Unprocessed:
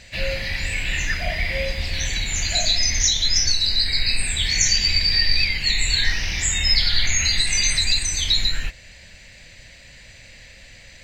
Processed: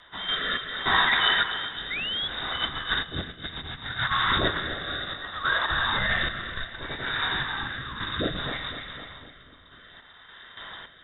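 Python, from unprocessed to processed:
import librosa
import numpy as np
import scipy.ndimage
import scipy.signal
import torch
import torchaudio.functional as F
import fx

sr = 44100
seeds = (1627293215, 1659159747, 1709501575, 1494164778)

y = scipy.signal.sosfilt(scipy.signal.butter(2, 100.0, 'highpass', fs=sr, output='sos'), x)
y = fx.high_shelf(y, sr, hz=2200.0, db=-3.5)
y = fx.rev_schroeder(y, sr, rt60_s=2.8, comb_ms=32, drr_db=6.5)
y = fx.tremolo_random(y, sr, seeds[0], hz=3.5, depth_pct=85)
y = fx.over_compress(y, sr, threshold_db=-29.0, ratio=-0.5)
y = fx.echo_feedback(y, sr, ms=254, feedback_pct=52, wet_db=-9.5)
y = fx.spec_paint(y, sr, seeds[1], shape='fall', start_s=1.9, length_s=0.38, low_hz=290.0, high_hz=1800.0, level_db=-33.0)
y = fx.freq_invert(y, sr, carrier_hz=3700)
y = fx.rotary(y, sr, hz=0.65)
y = y * librosa.db_to_amplitude(7.5)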